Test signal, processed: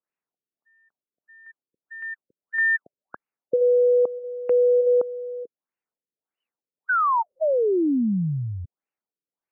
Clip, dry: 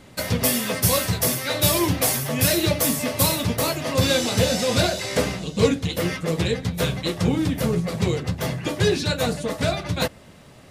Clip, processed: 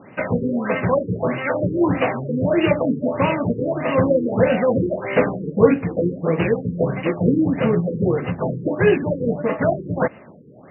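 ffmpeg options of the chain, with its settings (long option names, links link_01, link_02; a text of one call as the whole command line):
ffmpeg -i in.wav -af "highpass=170,lowpass=5600,afftfilt=real='re*lt(b*sr/1024,500*pow(3000/500,0.5+0.5*sin(2*PI*1.6*pts/sr)))':imag='im*lt(b*sr/1024,500*pow(3000/500,0.5+0.5*sin(2*PI*1.6*pts/sr)))':win_size=1024:overlap=0.75,volume=6dB" out.wav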